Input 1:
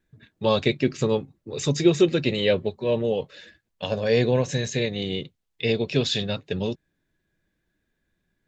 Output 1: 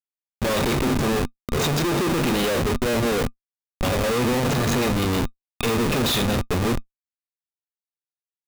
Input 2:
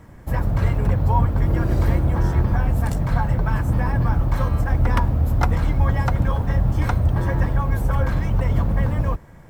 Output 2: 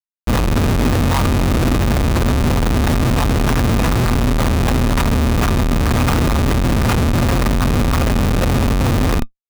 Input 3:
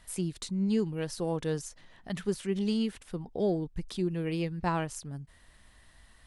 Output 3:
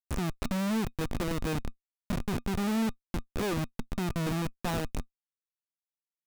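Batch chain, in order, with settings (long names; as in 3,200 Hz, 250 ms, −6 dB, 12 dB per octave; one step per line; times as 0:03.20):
peak hold with a decay on every bin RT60 0.35 s
comparator with hysteresis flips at −29.5 dBFS
hollow resonant body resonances 240/1,200/2,500/3,700 Hz, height 7 dB, ringing for 85 ms
level +2.5 dB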